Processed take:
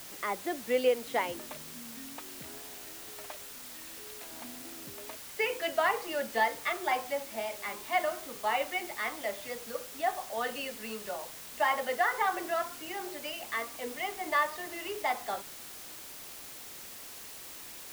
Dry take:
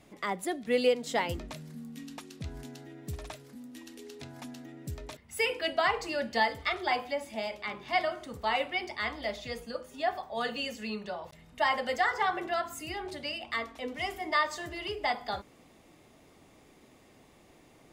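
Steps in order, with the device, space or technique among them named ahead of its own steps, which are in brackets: 2.58–4.31 HPF 450 Hz 12 dB/oct; wax cylinder (BPF 300–2700 Hz; wow and flutter; white noise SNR 11 dB)

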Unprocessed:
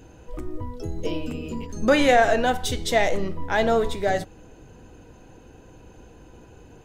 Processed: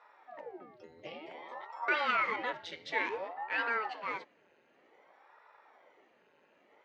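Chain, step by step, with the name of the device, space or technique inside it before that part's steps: voice changer toy (ring modulator with a swept carrier 510 Hz, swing 85%, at 0.55 Hz; speaker cabinet 580–4100 Hz, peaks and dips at 690 Hz -5 dB, 1100 Hz -4 dB, 2000 Hz +8 dB, 3400 Hz -4 dB); gain -8 dB

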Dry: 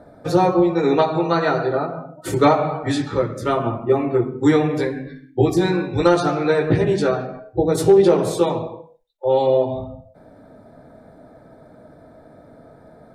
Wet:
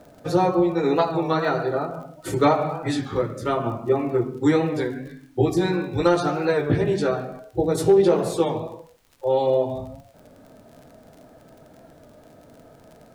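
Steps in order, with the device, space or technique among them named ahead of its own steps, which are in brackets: warped LP (record warp 33 1/3 rpm, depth 100 cents; crackle 50/s -36 dBFS; pink noise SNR 40 dB); gain -3.5 dB

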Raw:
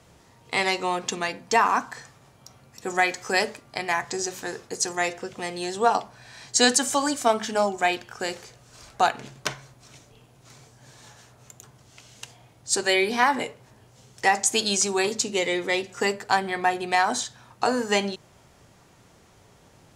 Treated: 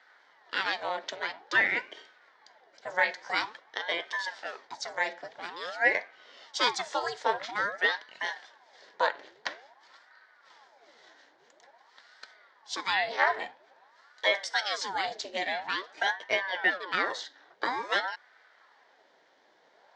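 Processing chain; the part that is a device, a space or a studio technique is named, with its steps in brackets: voice changer toy (ring modulator with a swept carrier 780 Hz, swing 80%, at 0.49 Hz; speaker cabinet 590–4400 Hz, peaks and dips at 1200 Hz -8 dB, 1800 Hz +5 dB, 2600 Hz -10 dB)

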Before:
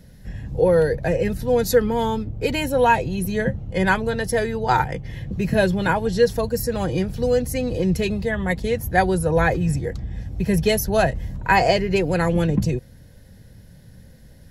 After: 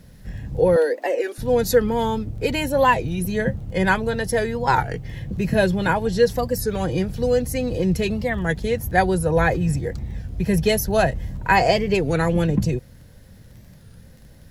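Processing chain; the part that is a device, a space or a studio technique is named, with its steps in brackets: warped LP (record warp 33 1/3 rpm, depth 160 cents; crackle 22/s -39 dBFS; pink noise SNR 42 dB); 0.76–1.38 steep high-pass 250 Hz 96 dB/oct

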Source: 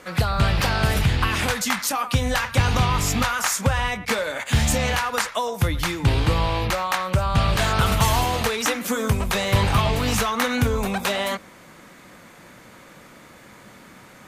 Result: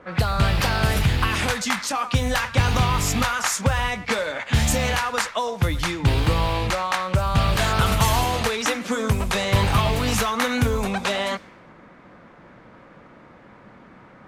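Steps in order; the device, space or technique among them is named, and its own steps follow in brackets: cassette deck with a dynamic noise filter (white noise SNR 26 dB; low-pass opened by the level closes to 1300 Hz, open at -17.5 dBFS)

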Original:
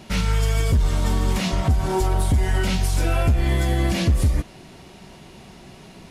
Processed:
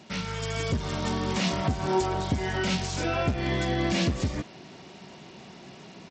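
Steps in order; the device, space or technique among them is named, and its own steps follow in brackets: Bluetooth headset (HPF 140 Hz 12 dB/oct; AGC gain up to 5 dB; downsampling 16000 Hz; gain -6.5 dB; SBC 64 kbps 32000 Hz)

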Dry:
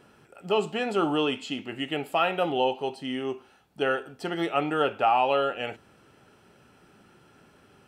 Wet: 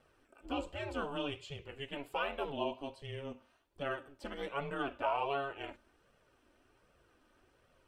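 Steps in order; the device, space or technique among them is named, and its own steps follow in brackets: alien voice (ring modulator 140 Hz; flange 1.3 Hz, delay 1.4 ms, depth 2.1 ms, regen -26%); gain -5.5 dB

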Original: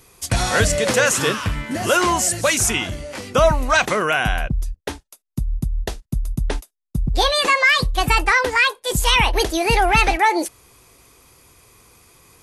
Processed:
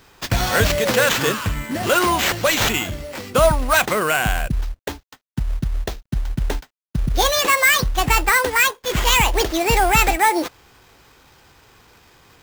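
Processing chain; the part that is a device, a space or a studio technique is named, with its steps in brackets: early companding sampler (sample-rate reducer 10000 Hz, jitter 0%; companded quantiser 6-bit)

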